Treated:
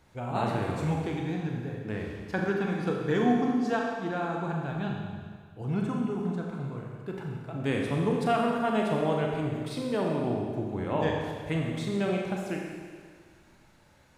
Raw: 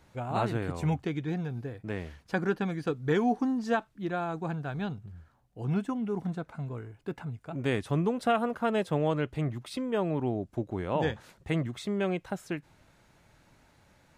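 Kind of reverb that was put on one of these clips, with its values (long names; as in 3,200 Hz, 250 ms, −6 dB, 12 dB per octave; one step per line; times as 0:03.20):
four-comb reverb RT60 1.8 s, combs from 29 ms, DRR −0.5 dB
level −1.5 dB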